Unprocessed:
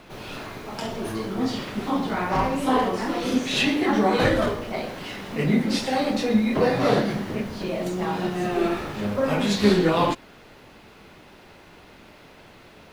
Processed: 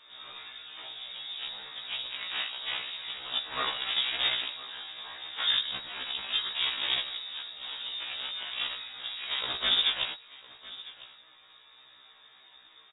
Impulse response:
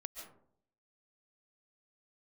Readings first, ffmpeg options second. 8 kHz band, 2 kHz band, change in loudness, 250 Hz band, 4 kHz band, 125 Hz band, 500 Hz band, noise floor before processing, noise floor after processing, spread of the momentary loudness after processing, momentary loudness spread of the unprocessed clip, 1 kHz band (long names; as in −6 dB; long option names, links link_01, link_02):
below −40 dB, −6.0 dB, −7.0 dB, −34.5 dB, +5.0 dB, below −30 dB, −26.0 dB, −49 dBFS, −58 dBFS, 16 LU, 12 LU, −15.5 dB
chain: -filter_complex "[0:a]equalizer=frequency=740:width_type=o:width=2.3:gain=-11.5,aecho=1:1:6.3:0.36,asplit=2[link_01][link_02];[link_02]alimiter=limit=-20.5dB:level=0:latency=1:release=442,volume=-3dB[link_03];[link_01][link_03]amix=inputs=2:normalize=0,aeval=exprs='0.335*(cos(1*acos(clip(val(0)/0.335,-1,1)))-cos(1*PI/2))+0.0596*(cos(3*acos(clip(val(0)/0.335,-1,1)))-cos(3*PI/2))+0.0473*(cos(7*acos(clip(val(0)/0.335,-1,1)))-cos(7*PI/2))+0.00944*(cos(8*acos(clip(val(0)/0.335,-1,1)))-cos(8*PI/2))':channel_layout=same,aecho=1:1:1005:0.119,lowpass=frequency=3200:width_type=q:width=0.5098,lowpass=frequency=3200:width_type=q:width=0.6013,lowpass=frequency=3200:width_type=q:width=0.9,lowpass=frequency=3200:width_type=q:width=2.563,afreqshift=-3800,afftfilt=real='re*1.73*eq(mod(b,3),0)':imag='im*1.73*eq(mod(b,3),0)':win_size=2048:overlap=0.75"